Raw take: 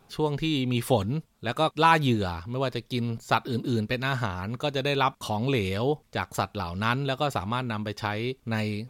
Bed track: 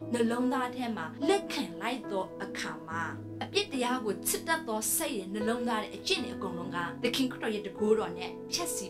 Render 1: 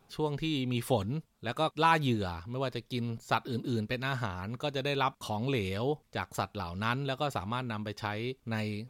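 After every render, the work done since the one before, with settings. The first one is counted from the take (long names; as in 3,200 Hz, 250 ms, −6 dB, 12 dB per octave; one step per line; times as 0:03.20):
level −5.5 dB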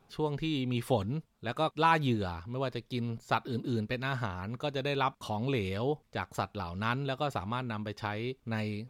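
high-shelf EQ 4,800 Hz −6 dB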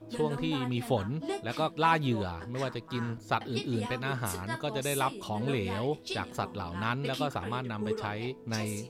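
mix in bed track −8 dB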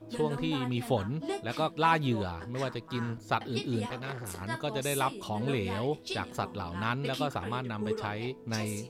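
0:03.86–0:04.41: saturating transformer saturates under 1,300 Hz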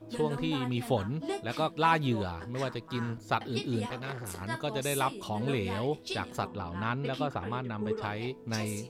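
0:06.47–0:08.02: low-pass filter 2,400 Hz 6 dB per octave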